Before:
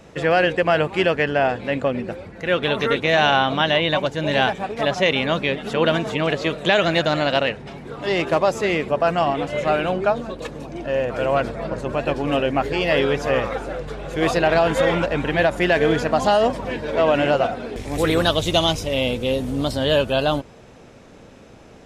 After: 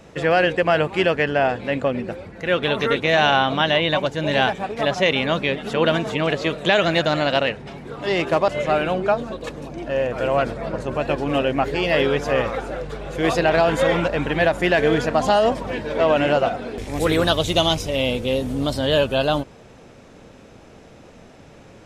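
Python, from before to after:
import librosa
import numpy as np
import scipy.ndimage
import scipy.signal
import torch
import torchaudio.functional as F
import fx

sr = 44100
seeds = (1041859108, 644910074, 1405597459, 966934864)

y = fx.edit(x, sr, fx.cut(start_s=8.48, length_s=0.98), tone=tone)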